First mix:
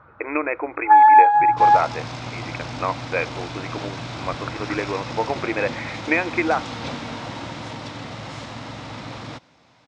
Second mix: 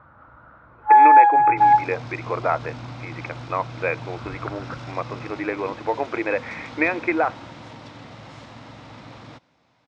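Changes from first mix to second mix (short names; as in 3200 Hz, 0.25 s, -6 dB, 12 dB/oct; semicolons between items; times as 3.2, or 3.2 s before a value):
speech: entry +0.70 s; second sound -7.0 dB; master: add high shelf 4200 Hz -5.5 dB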